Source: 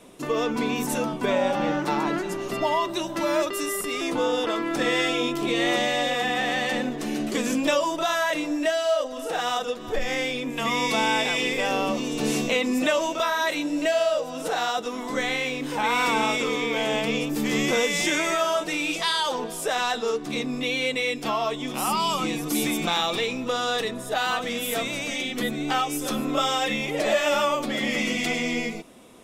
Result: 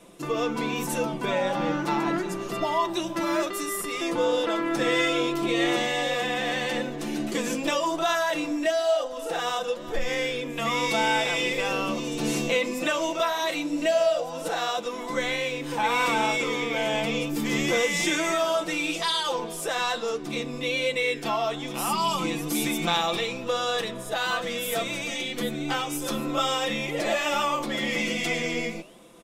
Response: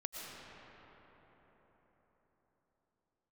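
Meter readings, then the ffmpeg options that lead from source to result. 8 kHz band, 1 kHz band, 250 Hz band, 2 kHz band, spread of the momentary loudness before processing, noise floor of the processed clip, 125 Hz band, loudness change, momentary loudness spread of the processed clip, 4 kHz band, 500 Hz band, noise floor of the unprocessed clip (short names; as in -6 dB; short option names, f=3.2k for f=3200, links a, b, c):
-1.5 dB, -1.5 dB, -2.0 dB, -1.5 dB, 5 LU, -35 dBFS, 0.0 dB, -1.5 dB, 6 LU, -1.5 dB, -1.0 dB, -34 dBFS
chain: -af "aecho=1:1:5.9:0.55,flanger=delay=9.4:depth=7.4:regen=89:speed=1.1:shape=sinusoidal,volume=2dB"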